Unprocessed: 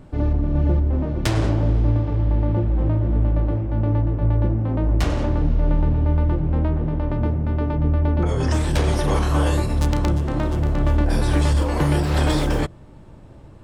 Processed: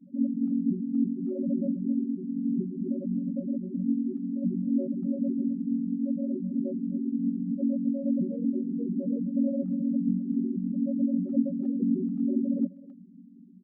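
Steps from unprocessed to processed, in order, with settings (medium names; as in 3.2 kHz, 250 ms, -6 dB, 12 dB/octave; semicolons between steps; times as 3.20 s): vocoder on a held chord major triad, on F#3; loudest bins only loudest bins 4; speakerphone echo 260 ms, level -17 dB; trim -2 dB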